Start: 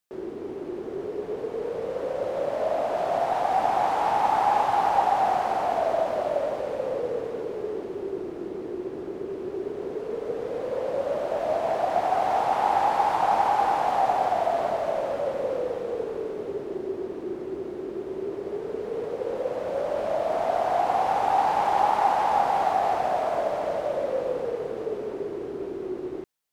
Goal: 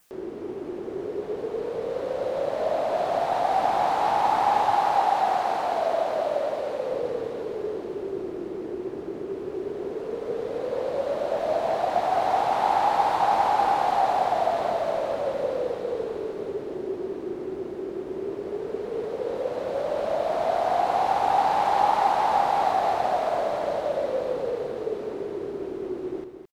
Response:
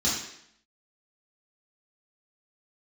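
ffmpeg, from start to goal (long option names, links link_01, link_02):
-filter_complex "[0:a]asettb=1/sr,asplit=3[link_01][link_02][link_03];[link_01]atrim=end=4.764[link_04];[link_02]atrim=start=4.76:end=6.92,asetpts=PTS-STARTPTS,afade=type=in:duration=0.004:curve=qsin,afade=type=out:start_time=2.156:duration=0.004:curve=qsin,lowshelf=frequency=160:gain=-8[link_05];[link_03]atrim=start=6.916[link_06];[link_04][link_05]acrossfade=duration=0.004:curve1=hsin:curve2=qsin[link_07];[link_07][link_06]acrossfade=duration=0.004:curve1=qsin:curve2=hsin,aecho=1:1:215:0.376,acompressor=mode=upward:threshold=-45dB:ratio=2.5,adynamicequalizer=threshold=0.00141:dfrequency=4000:dqfactor=3.1:tfrequency=4000:tqfactor=3.1:attack=5:release=100:ratio=0.375:range=2.5:mode=boostabove:tftype=bell"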